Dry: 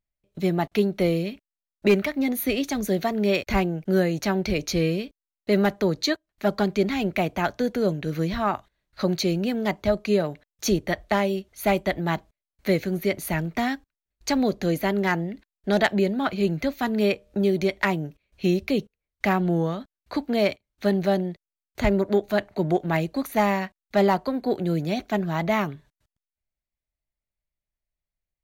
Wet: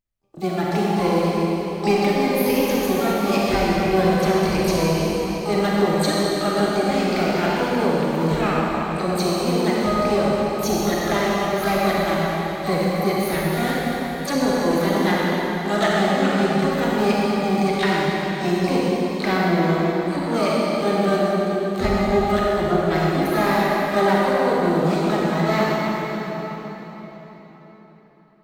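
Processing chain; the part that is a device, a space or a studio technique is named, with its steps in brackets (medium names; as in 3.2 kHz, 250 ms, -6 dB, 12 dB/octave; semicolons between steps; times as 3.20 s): shimmer-style reverb (harmony voices +12 st -6 dB; reverberation RT60 4.5 s, pre-delay 33 ms, DRR -5.5 dB); trim -3 dB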